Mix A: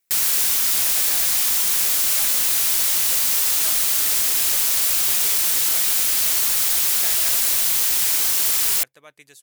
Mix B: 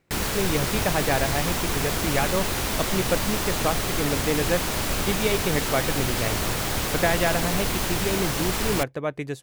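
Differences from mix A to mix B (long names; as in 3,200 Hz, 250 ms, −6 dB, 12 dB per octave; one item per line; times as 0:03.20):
background −10.5 dB
master: remove first-order pre-emphasis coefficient 0.97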